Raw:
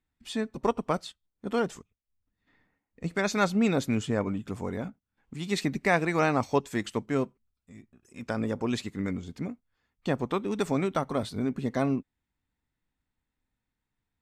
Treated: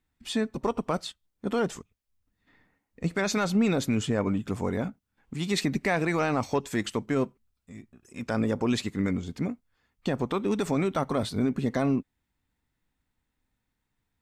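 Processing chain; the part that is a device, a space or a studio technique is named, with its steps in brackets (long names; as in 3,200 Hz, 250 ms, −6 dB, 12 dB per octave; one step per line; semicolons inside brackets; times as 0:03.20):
soft clipper into limiter (soft clipping −12 dBFS, distortion −24 dB; brickwall limiter −20.5 dBFS, peak gain reduction 7.5 dB)
level +4.5 dB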